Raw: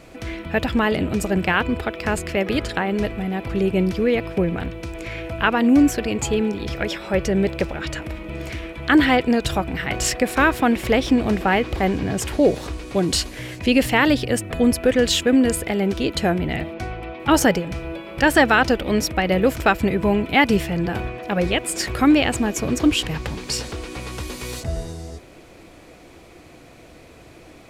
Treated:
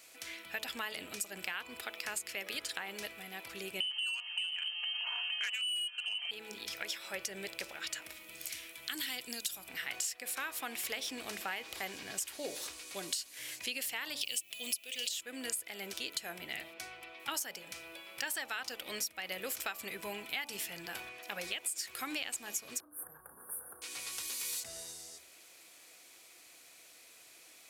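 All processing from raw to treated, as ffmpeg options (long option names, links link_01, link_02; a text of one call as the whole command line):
ffmpeg -i in.wav -filter_complex "[0:a]asettb=1/sr,asplit=3[link_01][link_02][link_03];[link_01]atrim=end=3.804[link_04];[link_02]atrim=start=3.8:end=6.31,asetpts=PTS-STARTPTS,afade=type=in:duration=0.004:curve=qsin,afade=type=out:start_time=2.506:duration=0.004:curve=qsin,aecho=1:1:4:0.4,atrim=end_sample=110691,lowpass=frequency=2700:width_type=q:width=0.5098,lowpass=frequency=2700:width_type=q:width=0.6013,lowpass=frequency=2700:width_type=q:width=0.9,lowpass=frequency=2700:width_type=q:width=2.563,afreqshift=-3200,acontrast=67[link_05];[link_03]atrim=start=6.306[link_06];[link_04][link_05]acrossfade=duration=0.004:curve1=hsin:curve2=qsin[link_07];[link_07][link_06]acrossfade=duration=0.004:curve1=qsin:curve2=hsin,asettb=1/sr,asplit=3[link_08][link_09][link_10];[link_08]atrim=end=8.124[link_11];[link_09]atrim=start=8.12:end=9.69,asetpts=PTS-STARTPTS,afade=type=in:duration=0.004:curve=qsin,afade=type=out:start_time=1.566:duration=0.004:curve=qsin,acrossover=split=290|3000[link_12][link_13][link_14];[link_13]acompressor=threshold=-44dB:ratio=1.5:attack=3.2:release=140:knee=2.83:detection=peak[link_15];[link_12][link_15][link_14]amix=inputs=3:normalize=0,highshelf=frequency=7500:gain=8[link_16];[link_10]atrim=start=9.686[link_17];[link_11][link_16]acrossfade=duration=0.004:curve1=hsin:curve2=qsin[link_18];[link_18][link_17]acrossfade=duration=0.004:curve1=qsin:curve2=hsin,asettb=1/sr,asplit=3[link_19][link_20][link_21];[link_19]atrim=end=14.214[link_22];[link_20]atrim=start=14.21:end=15.09,asetpts=PTS-STARTPTS,afade=type=in:duration=0.004:curve=qsin,afade=type=out:start_time=0.876:duration=0.004:curve=qsin,highshelf=frequency=2100:width_type=q:width=3:gain=9.5,acrusher=bits=8:dc=4:mix=0:aa=0.000001[link_23];[link_21]atrim=start=15.086[link_24];[link_22][link_23]acrossfade=duration=0.004:curve1=hsin:curve2=qsin[link_25];[link_25][link_24]acrossfade=duration=0.004:curve1=qsin:curve2=hsin,asettb=1/sr,asplit=3[link_26][link_27][link_28];[link_26]atrim=end=22.804[link_29];[link_27]atrim=start=22.8:end=23.82,asetpts=PTS-STARTPTS,afade=type=in:duration=0.004:curve=qsin,afade=type=out:start_time=1.016:duration=0.004:curve=qsin,asuperstop=centerf=4100:order=20:qfactor=0.52,asplit=2[link_30][link_31];[link_31]adelay=34,volume=-6.5dB[link_32];[link_30][link_32]amix=inputs=2:normalize=0,atrim=end_sample=44982,acompressor=threshold=-29dB:ratio=10:attack=3.2:release=140:knee=1:detection=peak[link_33];[link_28]atrim=start=23.816[link_34];[link_29][link_33]acrossfade=duration=0.004:curve1=hsin:curve2=qsin[link_35];[link_35][link_34]acrossfade=duration=0.004:curve1=qsin:curve2=hsin,aderivative,bandreject=frequency=72.68:width_type=h:width=4,bandreject=frequency=145.36:width_type=h:width=4,bandreject=frequency=218.04:width_type=h:width=4,bandreject=frequency=290.72:width_type=h:width=4,bandreject=frequency=363.4:width_type=h:width=4,bandreject=frequency=436.08:width_type=h:width=4,bandreject=frequency=508.76:width_type=h:width=4,bandreject=frequency=581.44:width_type=h:width=4,bandreject=frequency=654.12:width_type=h:width=4,bandreject=frequency=726.8:width_type=h:width=4,bandreject=frequency=799.48:width_type=h:width=4,bandreject=frequency=872.16:width_type=h:width=4,bandreject=frequency=944.84:width_type=h:width=4,bandreject=frequency=1017.52:width_type=h:width=4,bandreject=frequency=1090.2:width_type=h:width=4,bandreject=frequency=1162.88:width_type=h:width=4,bandreject=frequency=1235.56:width_type=h:width=4,acompressor=threshold=-35dB:ratio=12,volume=1dB" out.wav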